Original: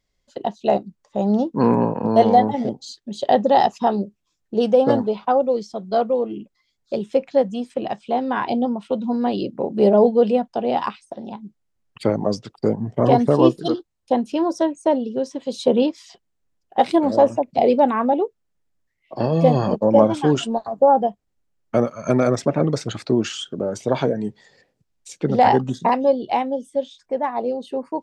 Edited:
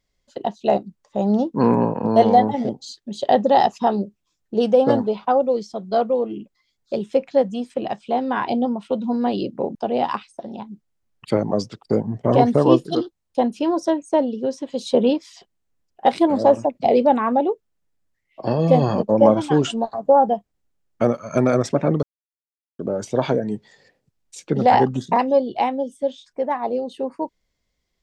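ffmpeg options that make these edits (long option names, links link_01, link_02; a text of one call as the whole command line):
ffmpeg -i in.wav -filter_complex "[0:a]asplit=4[link_01][link_02][link_03][link_04];[link_01]atrim=end=9.752[link_05];[link_02]atrim=start=10.478:end=22.76,asetpts=PTS-STARTPTS,afade=type=out:start_time=12.278:duration=0.004:curve=hsin[link_06];[link_03]atrim=start=22.76:end=23.52,asetpts=PTS-STARTPTS,volume=0[link_07];[link_04]atrim=start=23.52,asetpts=PTS-STARTPTS,afade=type=in:duration=0.004:curve=hsin[link_08];[link_06][link_07][link_08]concat=n=3:v=0:a=1[link_09];[link_05][link_09]acrossfade=duration=0.004:curve1=hsin:curve2=hsin" out.wav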